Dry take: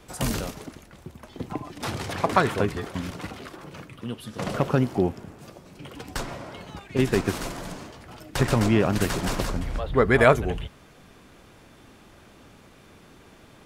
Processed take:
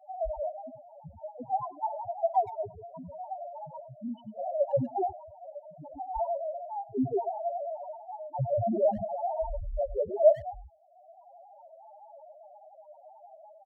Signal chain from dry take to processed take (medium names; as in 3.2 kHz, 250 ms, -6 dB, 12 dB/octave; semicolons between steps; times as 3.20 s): high-order bell 750 Hz +16 dB 1 oct; level rider gain up to 5 dB; loudest bins only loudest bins 1; speakerphone echo 100 ms, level -20 dB